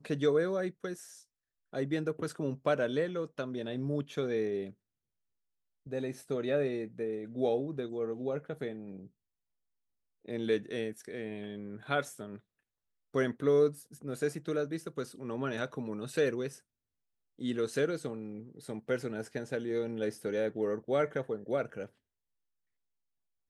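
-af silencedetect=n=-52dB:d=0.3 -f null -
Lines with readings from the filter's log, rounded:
silence_start: 1.23
silence_end: 1.73 | silence_duration: 0.50
silence_start: 4.72
silence_end: 5.86 | silence_duration: 1.14
silence_start: 9.07
silence_end: 10.25 | silence_duration: 1.17
silence_start: 12.39
silence_end: 13.14 | silence_duration: 0.75
silence_start: 16.59
silence_end: 17.39 | silence_duration: 0.79
silence_start: 21.88
silence_end: 23.50 | silence_duration: 1.62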